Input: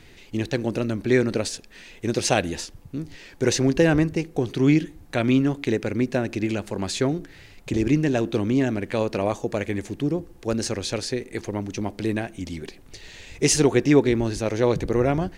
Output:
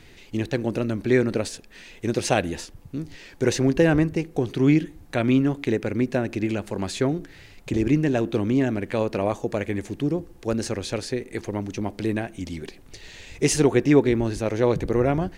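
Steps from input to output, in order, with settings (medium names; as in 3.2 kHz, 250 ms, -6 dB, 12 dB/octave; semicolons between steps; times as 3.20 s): dynamic bell 5.4 kHz, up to -5 dB, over -44 dBFS, Q 0.81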